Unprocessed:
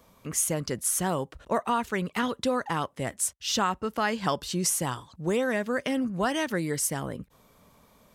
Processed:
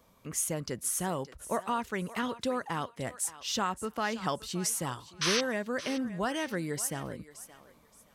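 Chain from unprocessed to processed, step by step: painted sound noise, 5.21–5.41 s, 980–6400 Hz -24 dBFS; thinning echo 572 ms, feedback 24%, high-pass 610 Hz, level -14 dB; trim -5 dB

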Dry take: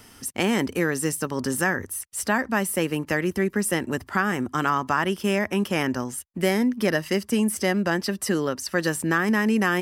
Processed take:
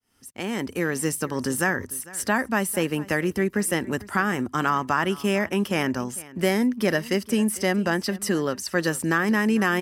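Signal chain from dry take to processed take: fade-in on the opening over 1.04 s; delay 450 ms -20 dB

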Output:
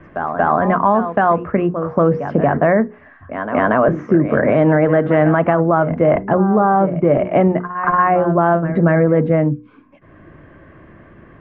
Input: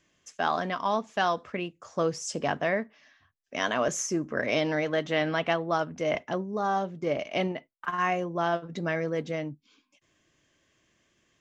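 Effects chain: low-pass 1.6 kHz 24 dB/octave; bass shelf 160 Hz +10 dB; hum notches 60/120/180/240/300/360/420/480 Hz; reverse echo 233 ms -14.5 dB; loudness maximiser +19 dB; three bands compressed up and down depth 40%; trim -3.5 dB

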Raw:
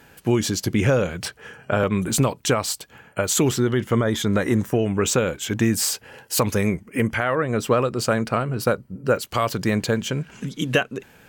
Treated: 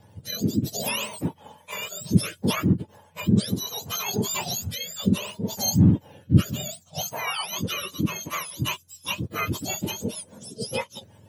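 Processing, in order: spectrum inverted on a logarithmic axis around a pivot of 1.2 kHz; rotary cabinet horn 0.65 Hz, later 6.3 Hz, at 8.08 s; trim -2 dB

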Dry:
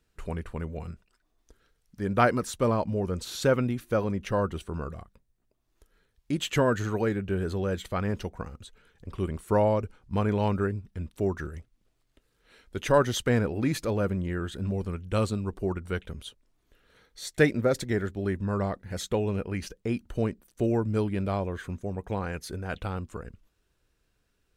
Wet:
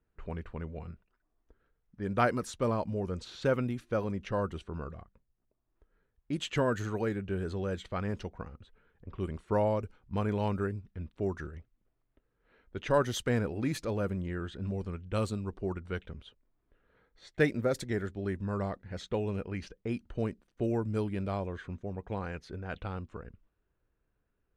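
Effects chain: level-controlled noise filter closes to 1.6 kHz, open at -22.5 dBFS; trim -5 dB

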